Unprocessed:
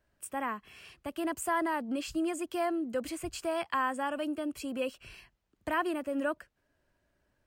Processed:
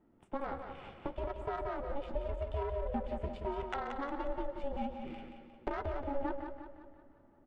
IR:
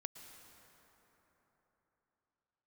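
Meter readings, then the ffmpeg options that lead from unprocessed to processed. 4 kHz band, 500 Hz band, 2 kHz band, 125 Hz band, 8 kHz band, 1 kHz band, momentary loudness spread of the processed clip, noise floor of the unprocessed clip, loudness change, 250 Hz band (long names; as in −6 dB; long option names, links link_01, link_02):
−11.5 dB, −3.0 dB, −11.0 dB, +11.5 dB, below −25 dB, −5.5 dB, 9 LU, −77 dBFS, −6.0 dB, −8.5 dB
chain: -filter_complex "[0:a]equalizer=frequency=3200:width_type=o:width=0.34:gain=8,bandreject=frequency=64.31:width_type=h:width=4,bandreject=frequency=128.62:width_type=h:width=4,bandreject=frequency=192.93:width_type=h:width=4,bandreject=frequency=257.24:width_type=h:width=4,bandreject=frequency=321.55:width_type=h:width=4,bandreject=frequency=385.86:width_type=h:width=4,bandreject=frequency=450.17:width_type=h:width=4,acompressor=threshold=-43dB:ratio=6,aeval=exprs='val(0)*sin(2*PI*280*n/s)':channel_layout=same,flanger=delay=6.6:depth=6:regen=-48:speed=1.4:shape=triangular,adynamicsmooth=sensitivity=5.5:basefreq=840,aecho=1:1:178|356|534|712|890|1068:0.447|0.214|0.103|0.0494|0.0237|0.0114,asplit=2[link_01][link_02];[1:a]atrim=start_sample=2205,adelay=133[link_03];[link_02][link_03]afir=irnorm=-1:irlink=0,volume=-11dB[link_04];[link_01][link_04]amix=inputs=2:normalize=0,volume=16.5dB"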